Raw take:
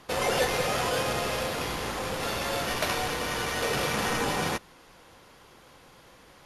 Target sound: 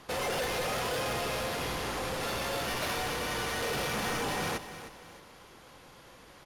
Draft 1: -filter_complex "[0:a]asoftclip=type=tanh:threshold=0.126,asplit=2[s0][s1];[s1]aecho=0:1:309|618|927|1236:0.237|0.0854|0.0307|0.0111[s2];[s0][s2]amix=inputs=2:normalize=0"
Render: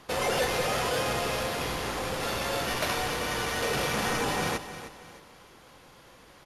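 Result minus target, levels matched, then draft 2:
saturation: distortion -13 dB
-filter_complex "[0:a]asoftclip=type=tanh:threshold=0.0355,asplit=2[s0][s1];[s1]aecho=0:1:309|618|927|1236:0.237|0.0854|0.0307|0.0111[s2];[s0][s2]amix=inputs=2:normalize=0"

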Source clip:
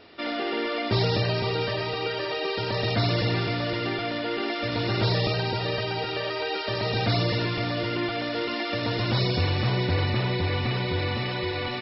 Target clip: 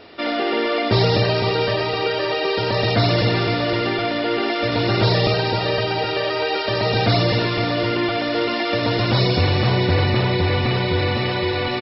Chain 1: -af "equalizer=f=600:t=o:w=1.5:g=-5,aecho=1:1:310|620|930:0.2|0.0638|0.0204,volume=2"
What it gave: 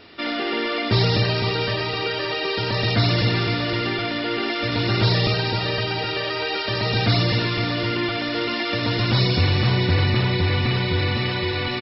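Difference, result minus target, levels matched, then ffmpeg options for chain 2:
500 Hz band -4.0 dB
-af "equalizer=f=600:t=o:w=1.5:g=2.5,aecho=1:1:310|620|930:0.2|0.0638|0.0204,volume=2"

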